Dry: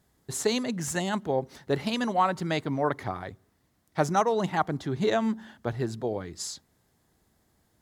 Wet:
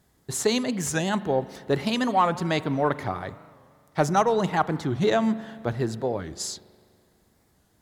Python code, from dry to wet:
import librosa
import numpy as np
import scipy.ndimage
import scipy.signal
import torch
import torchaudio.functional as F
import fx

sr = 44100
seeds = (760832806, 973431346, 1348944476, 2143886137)

p1 = 10.0 ** (-17.5 / 20.0) * np.tanh(x / 10.0 ** (-17.5 / 20.0))
p2 = x + (p1 * librosa.db_to_amplitude(-6.0))
p3 = fx.rev_spring(p2, sr, rt60_s=2.1, pass_ms=(41,), chirp_ms=30, drr_db=16.0)
y = fx.record_warp(p3, sr, rpm=45.0, depth_cents=160.0)